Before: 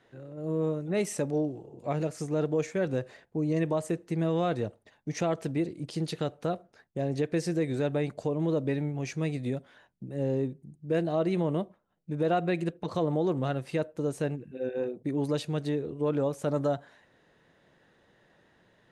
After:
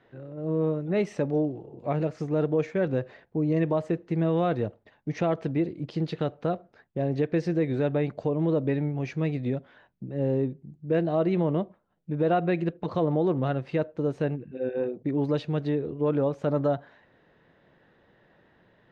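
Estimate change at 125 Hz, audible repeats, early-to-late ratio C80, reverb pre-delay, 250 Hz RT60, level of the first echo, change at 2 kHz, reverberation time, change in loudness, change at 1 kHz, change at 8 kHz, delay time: +3.5 dB, none, none, none, none, none, +1.5 dB, none, +3.0 dB, +2.5 dB, under -10 dB, none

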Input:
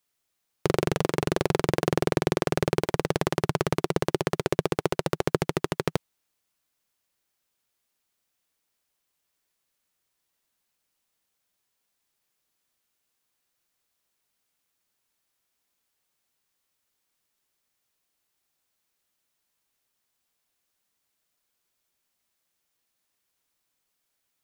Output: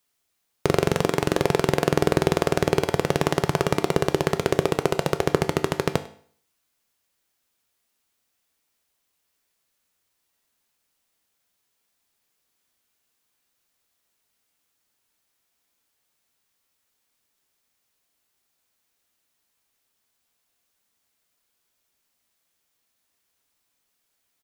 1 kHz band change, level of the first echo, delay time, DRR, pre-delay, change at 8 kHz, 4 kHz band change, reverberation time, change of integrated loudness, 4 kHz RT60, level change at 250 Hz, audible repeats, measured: +4.0 dB, -21.5 dB, 99 ms, 9.5 dB, 4 ms, +4.0 dB, +4.0 dB, 0.55 s, +4.0 dB, 0.50 s, +3.0 dB, 1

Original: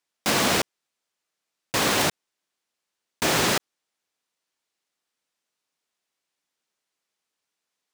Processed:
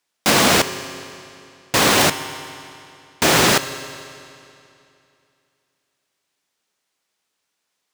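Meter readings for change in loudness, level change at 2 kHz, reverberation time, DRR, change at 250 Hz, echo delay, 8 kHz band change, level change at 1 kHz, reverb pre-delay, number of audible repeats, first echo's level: +7.0 dB, +7.5 dB, 2.7 s, 11.0 dB, +7.0 dB, none, +7.5 dB, +7.5 dB, 19 ms, none, none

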